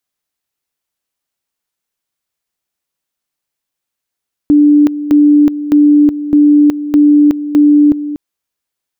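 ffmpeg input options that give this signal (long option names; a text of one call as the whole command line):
ffmpeg -f lavfi -i "aevalsrc='pow(10,(-3.5-13*gte(mod(t,0.61),0.37))/20)*sin(2*PI*294*t)':duration=3.66:sample_rate=44100" out.wav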